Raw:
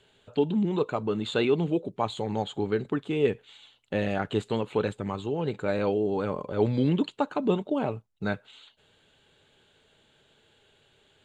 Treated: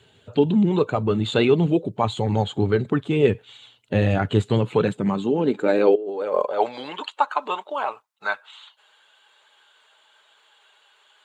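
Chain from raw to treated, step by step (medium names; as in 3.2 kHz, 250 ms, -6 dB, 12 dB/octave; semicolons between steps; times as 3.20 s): coarse spectral quantiser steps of 15 dB; 5.95–6.47 s: compressor with a negative ratio -33 dBFS, ratio -0.5; high-pass sweep 93 Hz -> 1 kHz, 4.41–6.97 s; trim +6 dB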